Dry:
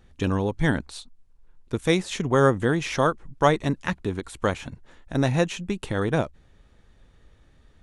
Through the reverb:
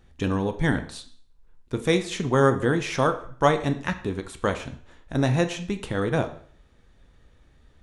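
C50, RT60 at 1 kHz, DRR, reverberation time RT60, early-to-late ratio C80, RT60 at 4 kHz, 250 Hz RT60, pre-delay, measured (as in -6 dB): 12.5 dB, 0.50 s, 7.5 dB, 0.50 s, 15.5 dB, 0.50 s, 0.55 s, 6 ms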